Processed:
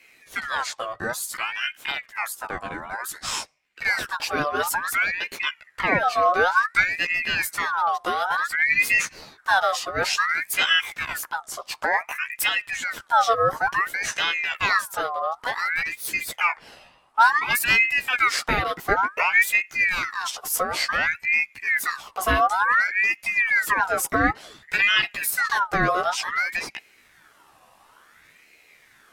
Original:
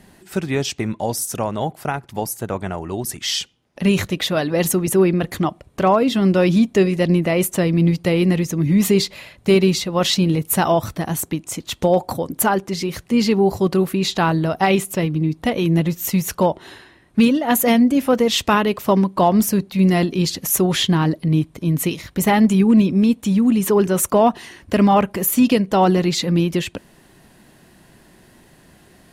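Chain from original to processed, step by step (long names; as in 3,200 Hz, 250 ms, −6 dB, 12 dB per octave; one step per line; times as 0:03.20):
multi-voice chorus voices 2, 0.23 Hz, delay 14 ms, depth 1.1 ms
ring modulator whose carrier an LFO sweeps 1,600 Hz, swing 45%, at 0.56 Hz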